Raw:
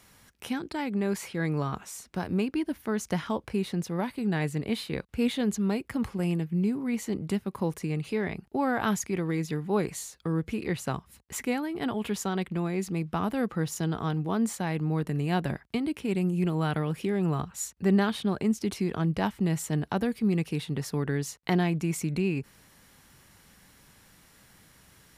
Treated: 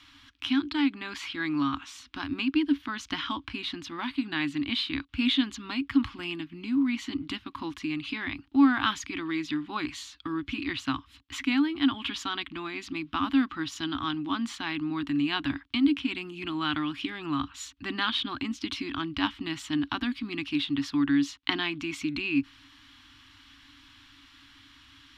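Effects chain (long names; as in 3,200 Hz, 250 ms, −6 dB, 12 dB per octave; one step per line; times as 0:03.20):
drawn EQ curve 110 Hz 0 dB, 190 Hz −22 dB, 280 Hz +13 dB, 450 Hz −27 dB, 1,100 Hz +5 dB, 2,000 Hz +3 dB, 3,300 Hz +13 dB, 10,000 Hz −17 dB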